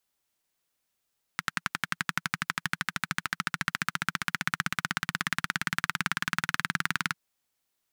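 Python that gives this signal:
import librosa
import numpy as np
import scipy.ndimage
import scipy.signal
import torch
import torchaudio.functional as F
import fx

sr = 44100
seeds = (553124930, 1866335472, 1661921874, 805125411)

y = fx.engine_single_rev(sr, seeds[0], length_s=5.75, rpm=1300, resonances_hz=(170.0, 1500.0), end_rpm=2400)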